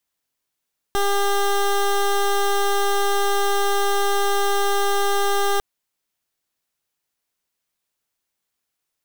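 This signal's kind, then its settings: pulse 401 Hz, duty 17% -19 dBFS 4.65 s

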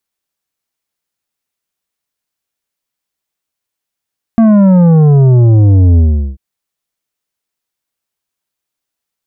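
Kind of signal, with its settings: sub drop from 230 Hz, over 1.99 s, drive 9 dB, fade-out 0.39 s, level -4.5 dB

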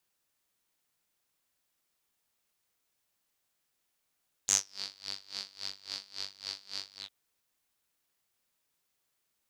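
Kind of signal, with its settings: synth patch with tremolo G2, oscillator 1 saw, detune 28 cents, filter bandpass, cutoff 3500 Hz, Q 8.1, filter envelope 1 oct, filter decay 0.32 s, filter sustain 40%, attack 2.9 ms, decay 0.15 s, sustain -18.5 dB, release 0.10 s, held 2.51 s, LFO 3.6 Hz, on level 23 dB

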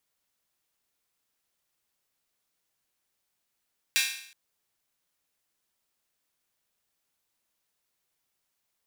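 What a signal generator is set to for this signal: open hi-hat length 0.37 s, high-pass 2200 Hz, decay 0.63 s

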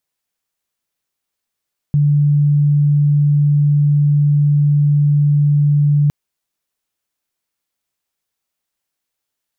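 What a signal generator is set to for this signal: tone sine 146 Hz -9.5 dBFS 4.16 s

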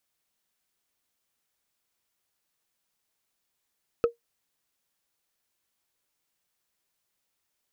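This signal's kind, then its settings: wood hit, lowest mode 469 Hz, decay 0.13 s, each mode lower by 9 dB, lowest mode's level -14 dB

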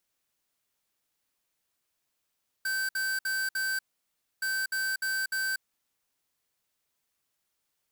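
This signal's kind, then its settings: beep pattern square 1550 Hz, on 0.24 s, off 0.06 s, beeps 4, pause 0.63 s, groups 2, -30 dBFS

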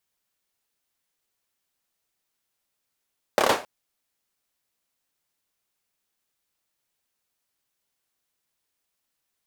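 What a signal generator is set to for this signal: hand clap length 0.27 s, bursts 5, apart 28 ms, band 610 Hz, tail 0.30 s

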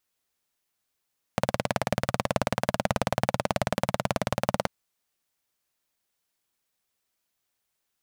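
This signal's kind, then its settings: single-cylinder engine model, steady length 3.29 s, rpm 2200, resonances 130/190/570 Hz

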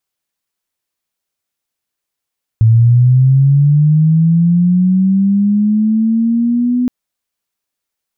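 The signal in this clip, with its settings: chirp linear 110 Hz -> 250 Hz -4.5 dBFS -> -10.5 dBFS 4.27 s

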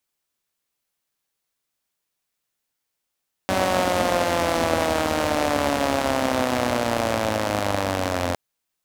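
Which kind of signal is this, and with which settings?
four-cylinder engine model, changing speed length 4.86 s, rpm 5700, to 2600, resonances 92/260/560 Hz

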